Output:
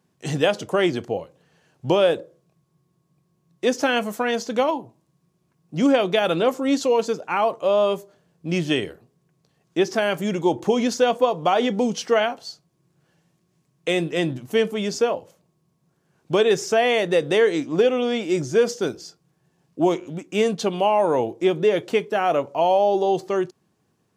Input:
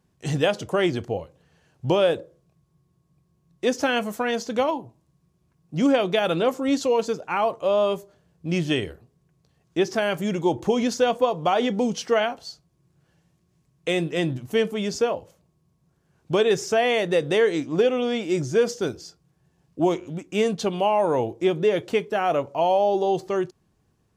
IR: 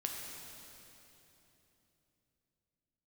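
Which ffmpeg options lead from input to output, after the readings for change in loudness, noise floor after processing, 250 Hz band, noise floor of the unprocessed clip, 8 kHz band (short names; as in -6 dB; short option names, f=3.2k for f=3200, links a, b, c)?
+2.0 dB, -69 dBFS, +1.5 dB, -68 dBFS, +2.0 dB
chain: -af "highpass=150,volume=2dB"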